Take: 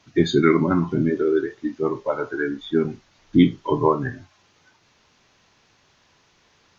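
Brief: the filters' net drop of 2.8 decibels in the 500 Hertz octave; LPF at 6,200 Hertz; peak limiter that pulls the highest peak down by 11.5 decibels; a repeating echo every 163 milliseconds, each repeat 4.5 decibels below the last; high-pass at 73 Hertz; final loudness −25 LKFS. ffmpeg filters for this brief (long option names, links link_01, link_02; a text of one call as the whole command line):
ffmpeg -i in.wav -af "highpass=73,lowpass=6200,equalizer=frequency=500:width_type=o:gain=-4,alimiter=limit=-15dB:level=0:latency=1,aecho=1:1:163|326|489|652|815|978|1141|1304|1467:0.596|0.357|0.214|0.129|0.0772|0.0463|0.0278|0.0167|0.01,volume=0.5dB" out.wav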